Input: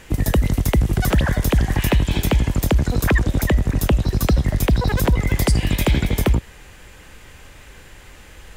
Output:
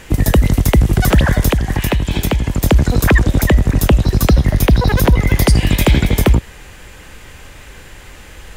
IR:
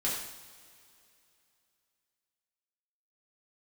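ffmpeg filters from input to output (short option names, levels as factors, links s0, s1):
-filter_complex "[0:a]asettb=1/sr,asplit=3[s0][s1][s2];[s0]atrim=end=1.514[s3];[s1]atrim=start=1.51:end=2.64,asetpts=PTS-STARTPTS,afade=t=in:d=0.004:c=qsin,afade=t=out:st=1.126:d=0.004:c=qsin,acompressor=threshold=0.126:ratio=6[s4];[s2]atrim=start=2.636[s5];[s3][s4]acrossfade=d=0.004:c1=hsin:c2=qsin[s6];[s6][s5]acrossfade=d=0.004:c1=qsin:c2=hsin,asettb=1/sr,asplit=3[s7][s8][s9];[s7]atrim=end=4.294[s10];[s8]atrim=start=4.29:end=5.57,asetpts=PTS-STARTPTS,afade=t=in:d=0.004:c=qsin,afade=t=out:st=1.276:d=0.004:c=qsin,bandreject=f=7700:w=5.8[s11];[s9]atrim=start=5.566[s12];[s10][s11]acrossfade=d=0.004:c1=hsin:c2=qsin[s13];[s13][s12]acrossfade=d=0.004:c1=qsin:c2=hsin,volume=2"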